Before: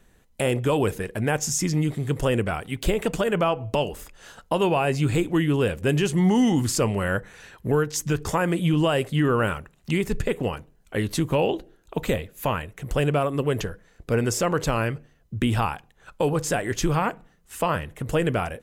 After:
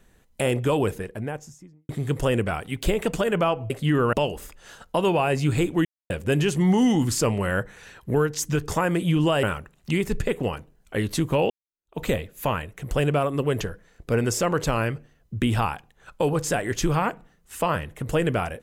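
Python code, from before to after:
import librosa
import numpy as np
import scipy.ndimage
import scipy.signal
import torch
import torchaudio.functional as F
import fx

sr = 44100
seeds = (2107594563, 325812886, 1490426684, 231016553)

y = fx.studio_fade_out(x, sr, start_s=0.63, length_s=1.26)
y = fx.edit(y, sr, fx.silence(start_s=5.42, length_s=0.25),
    fx.move(start_s=9.0, length_s=0.43, to_s=3.7),
    fx.fade_in_span(start_s=11.5, length_s=0.5, curve='exp'), tone=tone)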